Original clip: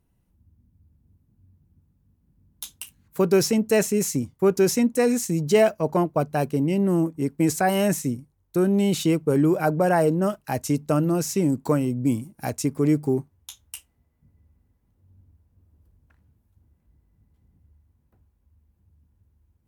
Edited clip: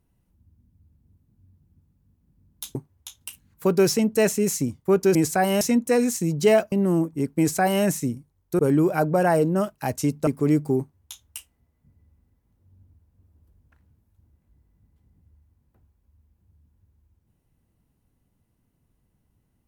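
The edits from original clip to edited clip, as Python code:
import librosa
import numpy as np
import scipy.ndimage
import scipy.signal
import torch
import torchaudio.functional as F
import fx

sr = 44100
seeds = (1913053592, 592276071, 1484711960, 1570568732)

y = fx.edit(x, sr, fx.cut(start_s=5.8, length_s=0.94),
    fx.duplicate(start_s=7.4, length_s=0.46, to_s=4.69),
    fx.cut(start_s=8.61, length_s=0.64),
    fx.cut(start_s=10.93, length_s=1.72),
    fx.duplicate(start_s=13.17, length_s=0.46, to_s=2.75), tone=tone)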